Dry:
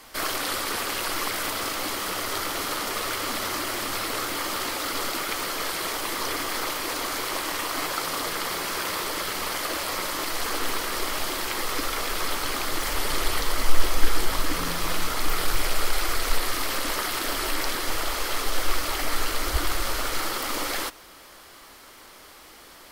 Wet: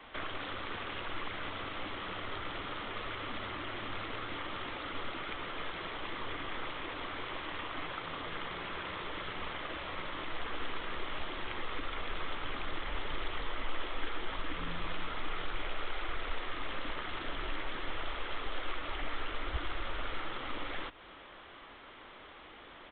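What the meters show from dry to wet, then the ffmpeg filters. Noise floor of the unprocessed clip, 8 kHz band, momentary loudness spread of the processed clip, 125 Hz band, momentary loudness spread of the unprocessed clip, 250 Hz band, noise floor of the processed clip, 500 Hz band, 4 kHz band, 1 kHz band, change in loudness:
-48 dBFS, under -40 dB, 1 LU, -8.5 dB, 1 LU, -10.0 dB, -52 dBFS, -11.0 dB, -13.0 dB, -10.5 dB, -12.5 dB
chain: -filter_complex "[0:a]acrossover=split=170|1500[s0][s1][s2];[s0]acompressor=threshold=0.0316:ratio=4[s3];[s1]acompressor=threshold=0.00891:ratio=4[s4];[s2]acompressor=threshold=0.0141:ratio=4[s5];[s3][s4][s5]amix=inputs=3:normalize=0,aresample=8000,aresample=44100,volume=0.75"

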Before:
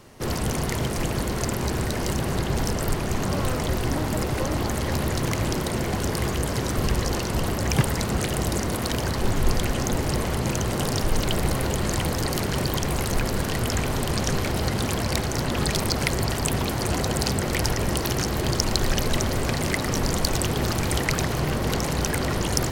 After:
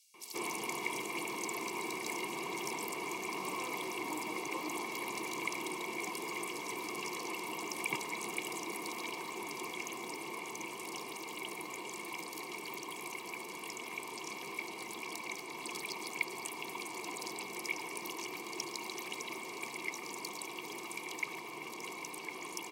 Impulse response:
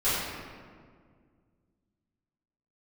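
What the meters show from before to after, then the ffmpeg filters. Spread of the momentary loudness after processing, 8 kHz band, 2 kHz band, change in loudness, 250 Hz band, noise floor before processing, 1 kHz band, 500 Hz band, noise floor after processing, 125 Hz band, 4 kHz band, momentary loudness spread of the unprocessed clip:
5 LU, -13.5 dB, -8.5 dB, -14.5 dB, -18.0 dB, -27 dBFS, -11.0 dB, -16.5 dB, -46 dBFS, -35.0 dB, -14.0 dB, 2 LU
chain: -filter_complex "[0:a]highpass=f=150:w=0.5412,highpass=f=150:w=1.3066,aemphasis=mode=production:type=75fm,dynaudnorm=f=360:g=17:m=3.76,asplit=3[s0][s1][s2];[s0]bandpass=f=300:t=q:w=8,volume=1[s3];[s1]bandpass=f=870:t=q:w=8,volume=0.501[s4];[s2]bandpass=f=2240:t=q:w=8,volume=0.355[s5];[s3][s4][s5]amix=inputs=3:normalize=0,bass=f=250:g=-14,treble=f=4000:g=4,aecho=1:1:1.8:0.84,acrossover=split=4100[s6][s7];[s6]adelay=140[s8];[s8][s7]amix=inputs=2:normalize=0,volume=3.16"

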